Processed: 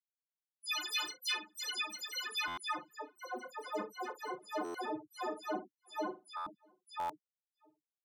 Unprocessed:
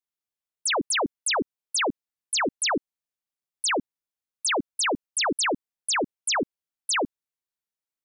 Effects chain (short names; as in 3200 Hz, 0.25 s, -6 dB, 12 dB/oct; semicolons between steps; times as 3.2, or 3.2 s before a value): frequency quantiser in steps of 6 st; graphic EQ 125/250/500/1000/2000/8000 Hz +12/-4/-11/-3/-8/-10 dB; reverse; compressor 8:1, threshold -30 dBFS, peak gain reduction 14.5 dB; reverse; companded quantiser 2-bit; loudest bins only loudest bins 2; band-pass sweep 2400 Hz -> 570 Hz, 2.52–3.12; on a send: tapped delay 42/98 ms -9/-18 dB; on the sum: echoes that change speed 0.175 s, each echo +3 st, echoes 3; outdoor echo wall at 110 m, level -29 dB; stuck buffer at 2.47/4.64/6.36/6.99, samples 512; gain +4 dB